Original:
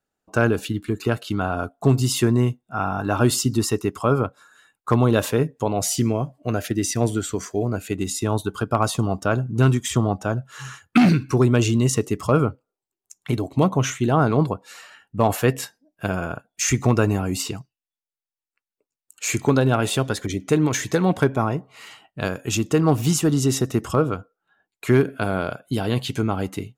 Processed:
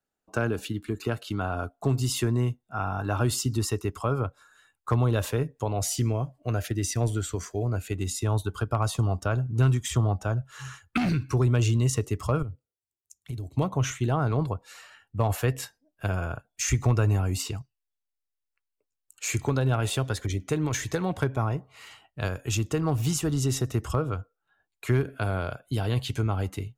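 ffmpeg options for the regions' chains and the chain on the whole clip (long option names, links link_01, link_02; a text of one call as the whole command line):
ffmpeg -i in.wav -filter_complex "[0:a]asettb=1/sr,asplit=3[link_01][link_02][link_03];[link_01]atrim=end=12.424[link_04];[link_02]atrim=start=12.42:end=13.57,asetpts=PTS-STARTPTS,afade=type=in:duration=0.004:curve=qsin,afade=type=out:start_time=1.146:duration=0.004:curve=qsin,highpass=45,acompressor=threshold=-26dB:ratio=2.5:attack=3.2:release=140:knee=1:detection=peak,equalizer=frequency=1100:width_type=o:width=2.8:gain=-14.5[link_05];[link_03]atrim=start=13.566[link_06];[link_04][link_05]acrossfade=duration=0.004:curve1=hsin:curve2=qsin[link_07];[link_07][link_06]acrossfade=duration=0.004:curve1=qsin:curve2=hsin,asubboost=boost=7.5:cutoff=72,acrossover=split=140[link_08][link_09];[link_09]acompressor=threshold=-20dB:ratio=2[link_10];[link_08][link_10]amix=inputs=2:normalize=0,volume=-5dB" out.wav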